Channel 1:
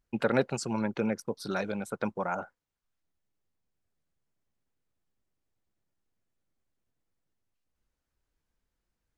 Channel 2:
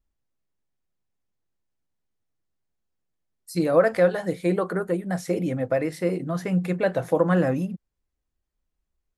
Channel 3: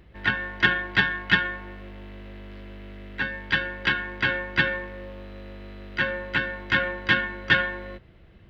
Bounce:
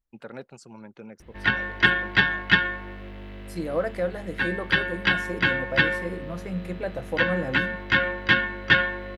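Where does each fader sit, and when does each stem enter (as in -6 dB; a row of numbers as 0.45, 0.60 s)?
-13.5, -8.0, +1.5 dB; 0.00, 0.00, 1.20 s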